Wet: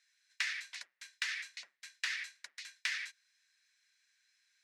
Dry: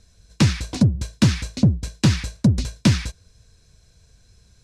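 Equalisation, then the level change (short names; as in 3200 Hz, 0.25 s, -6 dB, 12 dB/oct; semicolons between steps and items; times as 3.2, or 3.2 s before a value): ladder high-pass 1700 Hz, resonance 65%; bell 9600 Hz -5 dB 1.7 oct; -1.0 dB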